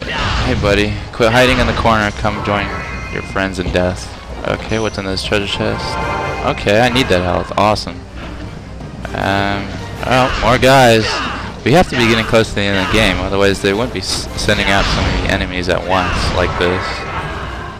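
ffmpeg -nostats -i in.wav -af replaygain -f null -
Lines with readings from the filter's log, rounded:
track_gain = -5.5 dB
track_peak = 0.443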